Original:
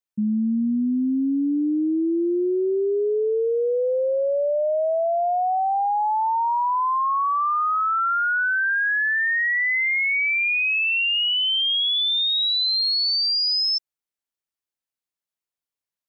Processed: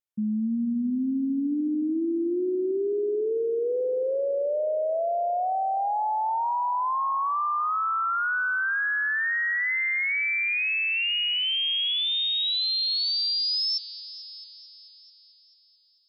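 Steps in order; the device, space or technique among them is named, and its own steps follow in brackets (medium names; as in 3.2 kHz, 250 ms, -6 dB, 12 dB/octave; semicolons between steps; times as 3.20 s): multi-head tape echo (multi-head delay 220 ms, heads all three, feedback 49%, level -20.5 dB; wow and flutter 24 cents); trim -4.5 dB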